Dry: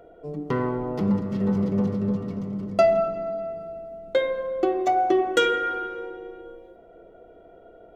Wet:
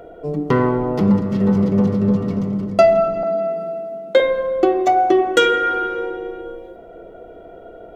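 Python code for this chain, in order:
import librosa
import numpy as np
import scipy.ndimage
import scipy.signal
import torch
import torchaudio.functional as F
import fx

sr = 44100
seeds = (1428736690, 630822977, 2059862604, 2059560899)

p1 = fx.steep_highpass(x, sr, hz=160.0, slope=96, at=(3.23, 4.2))
p2 = fx.rider(p1, sr, range_db=5, speed_s=0.5)
p3 = p1 + (p2 * 10.0 ** (0.0 / 20.0))
y = p3 * 10.0 ** (1.5 / 20.0)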